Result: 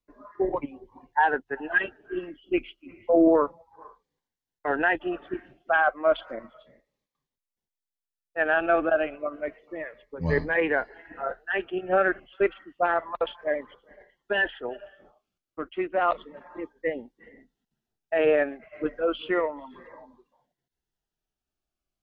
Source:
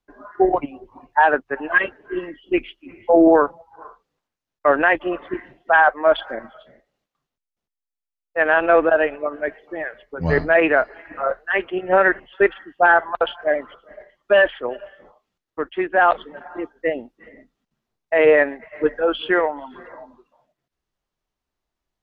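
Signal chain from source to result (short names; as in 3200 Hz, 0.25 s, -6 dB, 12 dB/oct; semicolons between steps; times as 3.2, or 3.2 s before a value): cascading phaser falling 0.31 Hz; gain -5 dB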